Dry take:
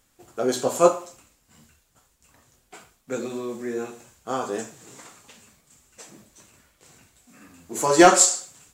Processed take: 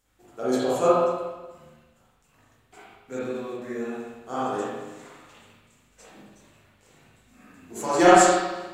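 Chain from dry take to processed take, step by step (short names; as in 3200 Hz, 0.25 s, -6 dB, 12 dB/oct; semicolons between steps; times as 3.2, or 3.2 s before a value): 3.19–3.62 expander -29 dBFS; spring tank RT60 1.2 s, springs 39/58 ms, chirp 25 ms, DRR -8.5 dB; gain -9 dB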